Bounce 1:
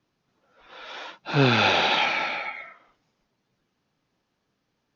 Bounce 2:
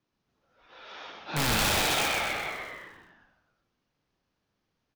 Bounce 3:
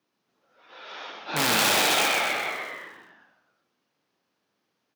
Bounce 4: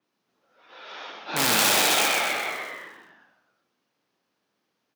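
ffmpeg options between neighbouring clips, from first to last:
-filter_complex "[0:a]aeval=exprs='(mod(5.31*val(0)+1,2)-1)/5.31':c=same,asplit=2[a][b];[b]adelay=40,volume=-10.5dB[c];[a][c]amix=inputs=2:normalize=0,asplit=9[d][e][f][g][h][i][j][k][l];[e]adelay=127,afreqshift=-100,volume=-3dB[m];[f]adelay=254,afreqshift=-200,volume=-8.2dB[n];[g]adelay=381,afreqshift=-300,volume=-13.4dB[o];[h]adelay=508,afreqshift=-400,volume=-18.6dB[p];[i]adelay=635,afreqshift=-500,volume=-23.8dB[q];[j]adelay=762,afreqshift=-600,volume=-29dB[r];[k]adelay=889,afreqshift=-700,volume=-34.2dB[s];[l]adelay=1016,afreqshift=-800,volume=-39.3dB[t];[d][m][n][o][p][q][r][s][t]amix=inputs=9:normalize=0,volume=-7dB"
-af "highpass=230,volume=4.5dB"
-af "bandreject=f=50:t=h:w=6,bandreject=f=100:t=h:w=6,bandreject=f=150:t=h:w=6,adynamicequalizer=threshold=0.0126:dfrequency=5200:dqfactor=0.7:tfrequency=5200:tqfactor=0.7:attack=5:release=100:ratio=0.375:range=2:mode=boostabove:tftype=highshelf"

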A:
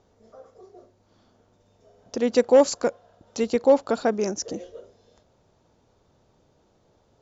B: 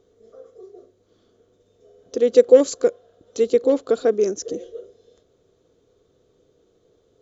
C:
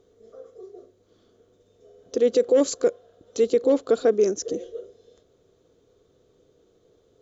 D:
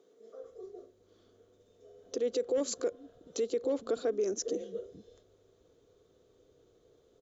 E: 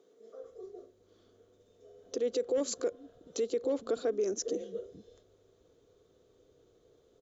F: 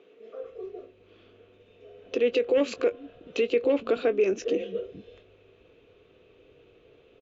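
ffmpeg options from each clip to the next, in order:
-af "superequalizer=6b=2:7b=3.55:9b=0.398:13b=1.78:15b=1.58,volume=-3.5dB"
-af "alimiter=limit=-11dB:level=0:latency=1:release=16"
-filter_complex "[0:a]alimiter=limit=-19.5dB:level=0:latency=1:release=174,acrossover=split=180[a][b];[a]adelay=430[c];[c][b]amix=inputs=2:normalize=0,volume=-3.5dB"
-af anull
-filter_complex "[0:a]lowpass=f=2.6k:t=q:w=8.4,asplit=2[a][b];[b]adelay=21,volume=-13dB[c];[a][c]amix=inputs=2:normalize=0,volume=7dB"

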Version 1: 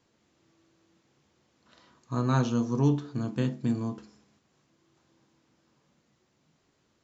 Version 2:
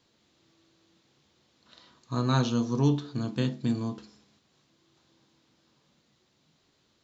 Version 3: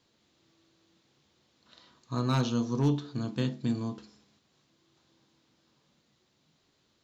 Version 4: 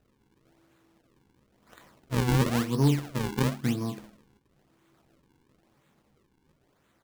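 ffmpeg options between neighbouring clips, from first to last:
-af "equalizer=f=3.9k:w=1.7:g=9"
-af "asoftclip=type=hard:threshold=-16.5dB,volume=-2dB"
-filter_complex "[0:a]acrusher=samples=40:mix=1:aa=0.000001:lfo=1:lforange=64:lforate=0.98,asplit=2[a][b];[b]adelay=15,volume=-13dB[c];[a][c]amix=inputs=2:normalize=0,volume=3dB"

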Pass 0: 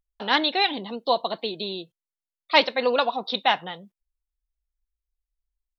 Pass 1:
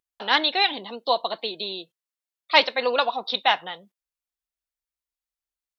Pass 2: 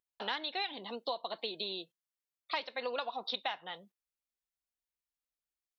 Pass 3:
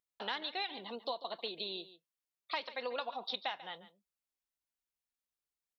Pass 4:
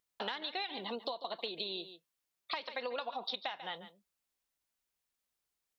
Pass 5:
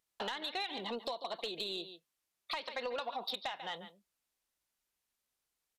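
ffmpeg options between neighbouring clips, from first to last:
-af "highpass=f=560:p=1,volume=2dB"
-af "acompressor=threshold=-27dB:ratio=12,volume=-5.5dB"
-af "aecho=1:1:142:0.168,volume=-2dB"
-af "acompressor=threshold=-41dB:ratio=6,volume=6dB"
-af "aresample=32000,aresample=44100,asoftclip=type=tanh:threshold=-30dB,volume=1.5dB"

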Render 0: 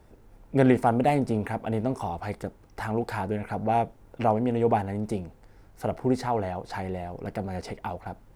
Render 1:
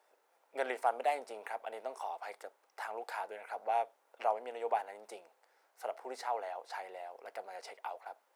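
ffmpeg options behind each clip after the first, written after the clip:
-af "highpass=f=560:w=0.5412,highpass=f=560:w=1.3066,volume=-7dB"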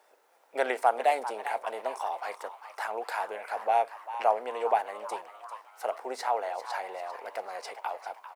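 -filter_complex "[0:a]asplit=6[a][b][c][d][e][f];[b]adelay=396,afreqshift=120,volume=-12.5dB[g];[c]adelay=792,afreqshift=240,volume=-18.7dB[h];[d]adelay=1188,afreqshift=360,volume=-24.9dB[i];[e]adelay=1584,afreqshift=480,volume=-31.1dB[j];[f]adelay=1980,afreqshift=600,volume=-37.3dB[k];[a][g][h][i][j][k]amix=inputs=6:normalize=0,volume=7.5dB"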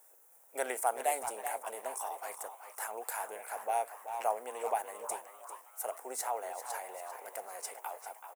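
-filter_complex "[0:a]asplit=2[a][b];[b]adelay=380,highpass=300,lowpass=3.4k,asoftclip=type=hard:threshold=-18.5dB,volume=-10dB[c];[a][c]amix=inputs=2:normalize=0,aexciter=amount=11.7:drive=3.6:freq=6.6k,volume=-7.5dB"

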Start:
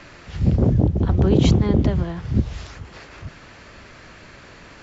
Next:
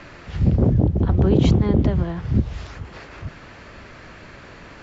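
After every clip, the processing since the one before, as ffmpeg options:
-filter_complex "[0:a]highshelf=f=4.2k:g=-8.5,asplit=2[a][b];[b]alimiter=limit=-14dB:level=0:latency=1:release=389,volume=0.5dB[c];[a][c]amix=inputs=2:normalize=0,volume=-3.5dB"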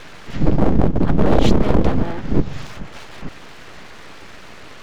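-af "aeval=exprs='abs(val(0))':c=same,volume=5dB"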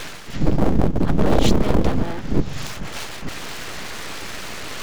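-af "areverse,acompressor=mode=upward:threshold=-18dB:ratio=2.5,areverse,crystalizer=i=2:c=0,volume=-2.5dB"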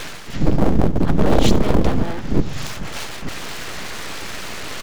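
-af "aecho=1:1:75:0.119,volume=1.5dB"

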